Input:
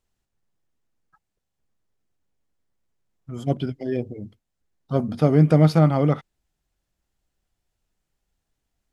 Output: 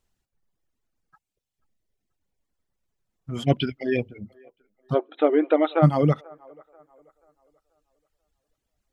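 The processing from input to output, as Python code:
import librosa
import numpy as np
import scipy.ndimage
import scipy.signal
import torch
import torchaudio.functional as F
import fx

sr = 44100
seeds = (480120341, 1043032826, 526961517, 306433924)

y = fx.peak_eq(x, sr, hz=2500.0, db=12.0, octaves=1.3, at=(3.35, 4.19))
y = fx.brickwall_bandpass(y, sr, low_hz=280.0, high_hz=4100.0, at=(4.93, 5.82), fade=0.02)
y = fx.dereverb_blind(y, sr, rt60_s=1.9)
y = fx.echo_wet_bandpass(y, sr, ms=485, feedback_pct=36, hz=840.0, wet_db=-23.0)
y = y * librosa.db_to_amplitude(2.5)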